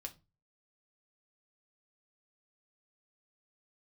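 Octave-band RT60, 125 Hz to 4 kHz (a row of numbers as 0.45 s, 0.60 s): 0.45 s, 0.35 s, 0.30 s, 0.25 s, 0.20 s, 0.20 s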